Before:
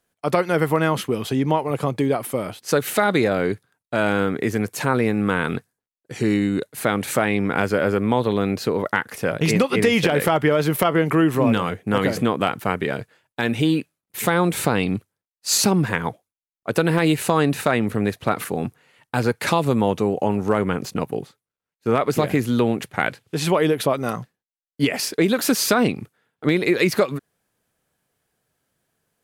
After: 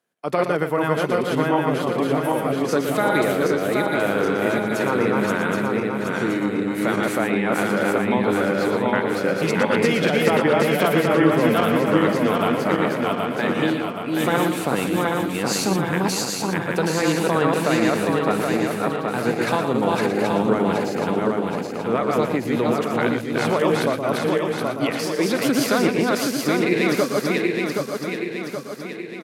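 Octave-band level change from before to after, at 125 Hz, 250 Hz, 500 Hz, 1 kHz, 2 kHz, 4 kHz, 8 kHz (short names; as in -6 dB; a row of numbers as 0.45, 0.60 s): -2.5, +1.0, +1.5, +1.5, +1.5, -0.5, -2.5 dB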